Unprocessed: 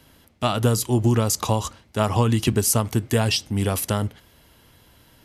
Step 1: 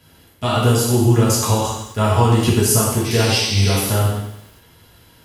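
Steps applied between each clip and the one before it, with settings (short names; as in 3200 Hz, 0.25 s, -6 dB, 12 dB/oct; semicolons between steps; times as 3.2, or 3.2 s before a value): painted sound noise, 3.04–3.75, 1900–6300 Hz -31 dBFS; non-linear reverb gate 0.3 s falling, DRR -7 dB; lo-fi delay 96 ms, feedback 55%, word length 6-bit, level -13 dB; gain -3 dB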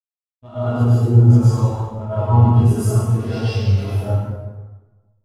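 backlash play -18.5 dBFS; plate-style reverb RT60 1.9 s, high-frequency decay 0.65×, pre-delay 95 ms, DRR -9.5 dB; spectral expander 1.5:1; gain -8.5 dB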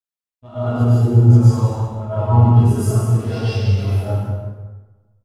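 echo 0.187 s -9.5 dB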